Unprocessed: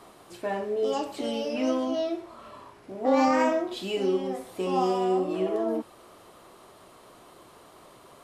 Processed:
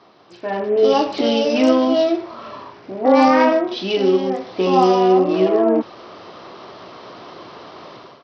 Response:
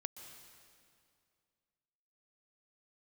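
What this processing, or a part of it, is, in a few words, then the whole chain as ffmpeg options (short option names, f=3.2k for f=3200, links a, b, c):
Bluetooth headset: -af "highpass=110,dynaudnorm=f=420:g=3:m=14.5dB,aresample=16000,aresample=44100" -ar 44100 -c:a sbc -b:a 64k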